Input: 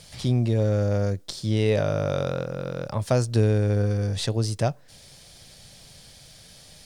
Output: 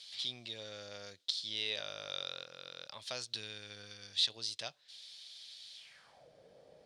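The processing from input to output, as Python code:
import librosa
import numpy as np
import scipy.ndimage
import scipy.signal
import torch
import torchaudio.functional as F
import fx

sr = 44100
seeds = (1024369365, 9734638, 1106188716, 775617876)

y = fx.dynamic_eq(x, sr, hz=530.0, q=0.83, threshold_db=-37.0, ratio=4.0, max_db=-6, at=(3.32, 4.3))
y = fx.filter_sweep_bandpass(y, sr, from_hz=3700.0, to_hz=500.0, start_s=5.76, end_s=6.28, q=3.3)
y = y * 10.0 ** (4.0 / 20.0)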